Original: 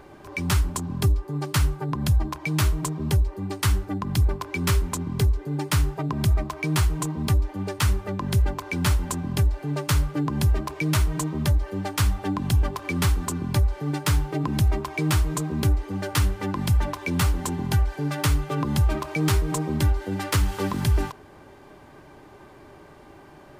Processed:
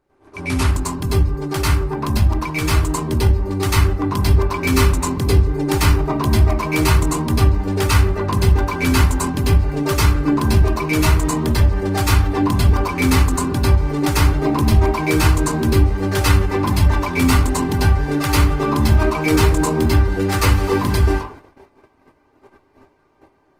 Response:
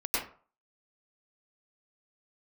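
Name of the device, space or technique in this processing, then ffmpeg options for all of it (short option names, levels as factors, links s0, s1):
speakerphone in a meeting room: -filter_complex "[1:a]atrim=start_sample=2205[s0];[0:a][s0]afir=irnorm=-1:irlink=0,dynaudnorm=f=620:g=11:m=3.76,agate=range=0.126:threshold=0.0158:ratio=16:detection=peak,volume=0.891" -ar 48000 -c:a libopus -b:a 20k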